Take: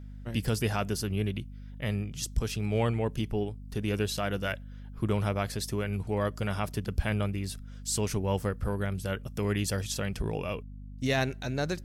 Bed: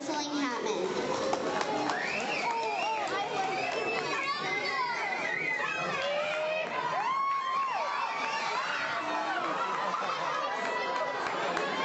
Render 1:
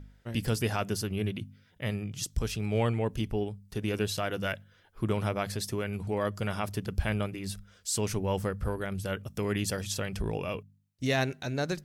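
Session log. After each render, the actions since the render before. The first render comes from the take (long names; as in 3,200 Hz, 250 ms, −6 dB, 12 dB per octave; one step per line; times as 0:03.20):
hum removal 50 Hz, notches 5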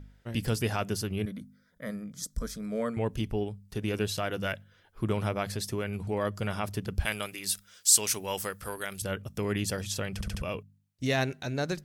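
0:01.25–0:02.97: phaser with its sweep stopped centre 550 Hz, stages 8
0:07.05–0:09.02: spectral tilt +4 dB per octave
0:10.14: stutter in place 0.07 s, 4 plays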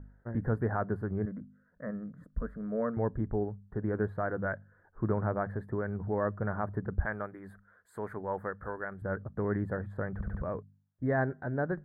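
elliptic low-pass filter 1,700 Hz, stop band 40 dB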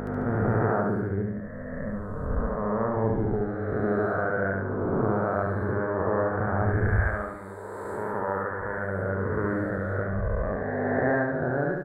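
peak hold with a rise ahead of every peak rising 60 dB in 2.98 s
on a send: repeating echo 72 ms, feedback 49%, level −3.5 dB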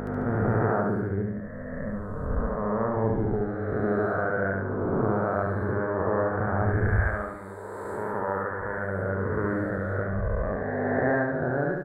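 no processing that can be heard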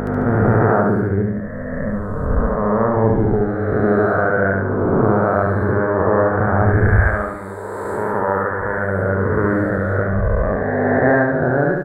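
level +10 dB
brickwall limiter −3 dBFS, peak gain reduction 2 dB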